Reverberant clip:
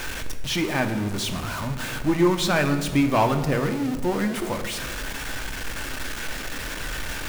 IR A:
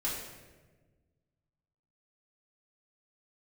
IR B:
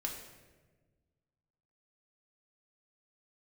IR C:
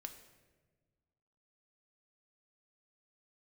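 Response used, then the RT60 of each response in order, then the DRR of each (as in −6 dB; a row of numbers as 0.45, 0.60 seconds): C; 1.3, 1.3, 1.4 seconds; −7.5, −0.5, 5.5 decibels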